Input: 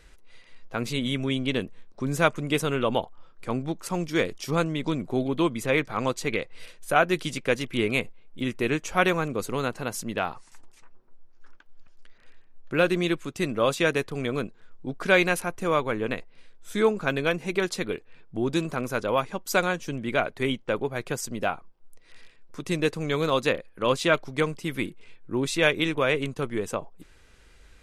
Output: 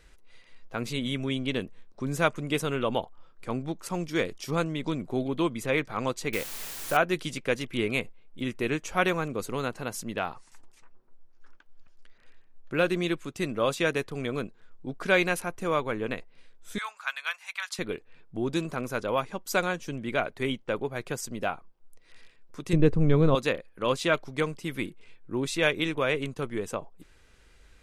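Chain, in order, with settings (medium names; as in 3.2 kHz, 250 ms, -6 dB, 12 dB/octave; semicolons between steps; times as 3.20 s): 6.33–6.97 s: word length cut 6-bit, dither triangular; 16.78–17.79 s: inverse Chebyshev high-pass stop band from 380 Hz, stop band 50 dB; 22.73–23.35 s: tilt EQ -4.5 dB/octave; trim -3 dB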